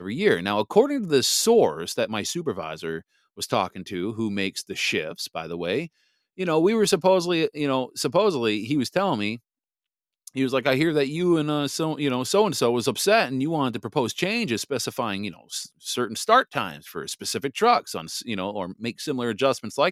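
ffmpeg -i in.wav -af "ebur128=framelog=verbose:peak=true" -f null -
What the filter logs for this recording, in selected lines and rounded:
Integrated loudness:
  I:         -24.0 LUFS
  Threshold: -34.3 LUFS
Loudness range:
  LRA:         5.2 LU
  Threshold: -44.6 LUFS
  LRA low:   -27.9 LUFS
  LRA high:  -22.7 LUFS
True peak:
  Peak:       -3.5 dBFS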